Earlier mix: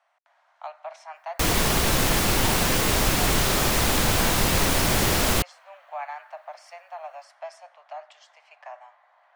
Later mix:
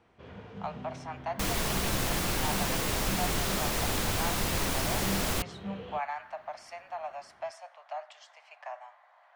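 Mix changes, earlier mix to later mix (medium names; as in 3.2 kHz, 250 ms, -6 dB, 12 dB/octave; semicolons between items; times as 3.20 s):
first sound: unmuted; second sound -8.5 dB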